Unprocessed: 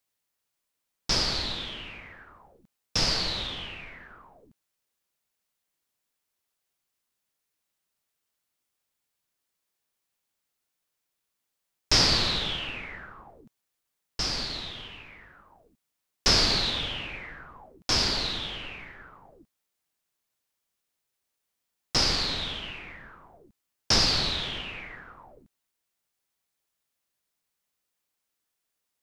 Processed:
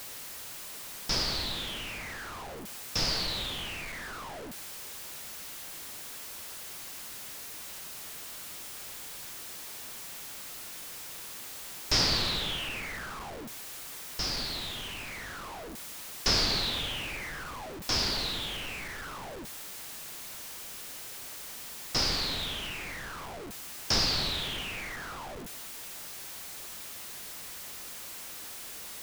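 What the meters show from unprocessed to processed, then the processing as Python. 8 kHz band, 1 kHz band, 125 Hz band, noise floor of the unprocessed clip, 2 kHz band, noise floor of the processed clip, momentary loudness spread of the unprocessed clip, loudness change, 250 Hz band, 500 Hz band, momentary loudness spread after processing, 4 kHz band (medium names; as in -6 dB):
-0.5 dB, -1.5 dB, -3.5 dB, -82 dBFS, -1.5 dB, -43 dBFS, 21 LU, -8.0 dB, -2.5 dB, -2.5 dB, 13 LU, -3.5 dB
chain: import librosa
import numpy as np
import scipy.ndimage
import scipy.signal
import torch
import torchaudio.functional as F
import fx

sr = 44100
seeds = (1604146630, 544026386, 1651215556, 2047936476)

y = x + 0.5 * 10.0 ** (-30.5 / 20.0) * np.sign(x)
y = y * librosa.db_to_amplitude(-5.5)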